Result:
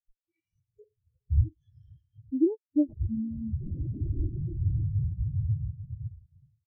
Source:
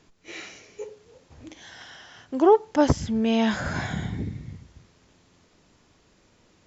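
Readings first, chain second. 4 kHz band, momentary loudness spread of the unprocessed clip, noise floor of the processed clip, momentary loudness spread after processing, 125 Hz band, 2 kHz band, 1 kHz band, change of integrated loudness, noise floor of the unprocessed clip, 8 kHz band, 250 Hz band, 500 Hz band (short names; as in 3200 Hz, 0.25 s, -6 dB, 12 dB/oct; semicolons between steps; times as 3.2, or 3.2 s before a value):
under -40 dB, 22 LU, under -85 dBFS, 10 LU, +5.0 dB, under -40 dB, under -40 dB, -7.5 dB, -61 dBFS, n/a, -4.5 dB, -14.0 dB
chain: bell 1200 Hz -12.5 dB 2.5 oct; on a send: diffused feedback echo 0.498 s, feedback 55%, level -11.5 dB; on the sum: compressor 4:1, threshold -42 dBFS, peak gain reduction 21 dB; resonant low shelf 180 Hz +8.5 dB, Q 3; in parallel at -5 dB: one-sided clip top -46 dBFS, bottom -34.5 dBFS; on the sum: notch 550 Hz, Q 16; AGC gain up to 8 dB; harmonic-percussive split percussive +4 dB; wavefolder -24 dBFS; comb 3.5 ms, depth 35%; spectral expander 4:1; gain +8 dB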